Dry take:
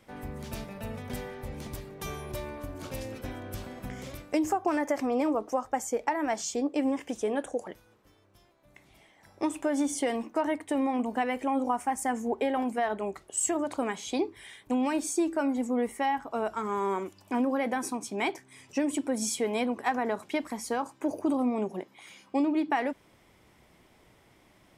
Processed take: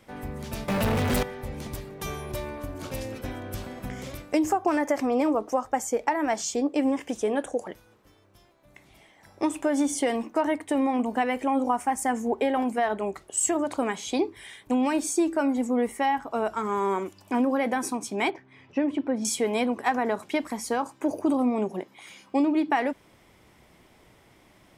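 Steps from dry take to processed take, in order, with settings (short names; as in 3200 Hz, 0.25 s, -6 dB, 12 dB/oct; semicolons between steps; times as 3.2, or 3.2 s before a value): 0.68–1.23 sample leveller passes 5; 18.3–19.25 air absorption 320 m; gain +3.5 dB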